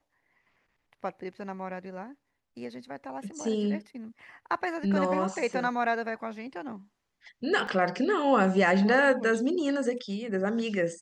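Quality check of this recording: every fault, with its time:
0:07.67: drop-out 2.6 ms

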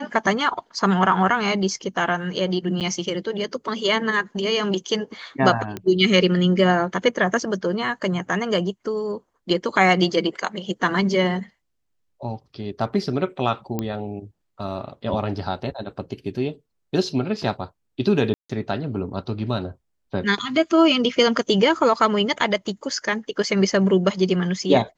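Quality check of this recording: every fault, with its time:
0:02.80–0:02.81: drop-out 8.2 ms
0:05.77: click −15 dBFS
0:13.79: click −12 dBFS
0:18.34–0:18.50: drop-out 155 ms

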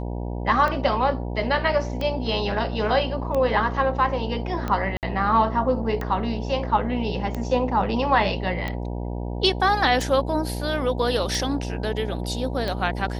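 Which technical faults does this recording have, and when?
mains buzz 60 Hz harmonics 16 −29 dBFS
scratch tick 45 rpm −15 dBFS
0:04.97–0:05.03: drop-out 58 ms

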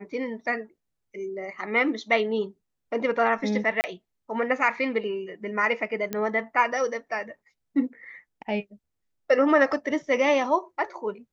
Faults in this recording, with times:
0:03.81–0:03.84: drop-out 29 ms
0:06.13: click −14 dBFS

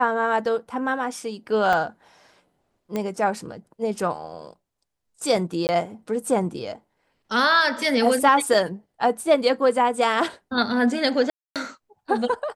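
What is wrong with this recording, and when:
0:01.73: drop-out 3.6 ms
0:02.96: click −14 dBFS
0:05.67–0:05.69: drop-out 19 ms
0:11.30–0:11.56: drop-out 257 ms

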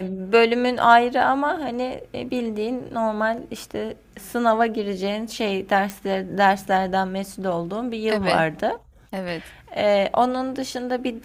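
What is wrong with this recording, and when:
0:05.90: click

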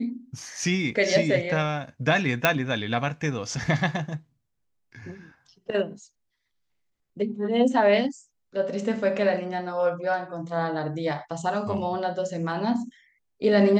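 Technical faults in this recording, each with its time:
0:02.45: click −4 dBFS

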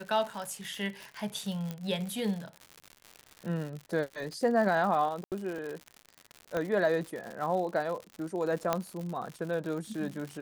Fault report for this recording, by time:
surface crackle 130 per second −36 dBFS
0:01.71: click −22 dBFS
0:05.24–0:05.32: drop-out 78 ms
0:06.57: click −19 dBFS
0:08.73: click −13 dBFS

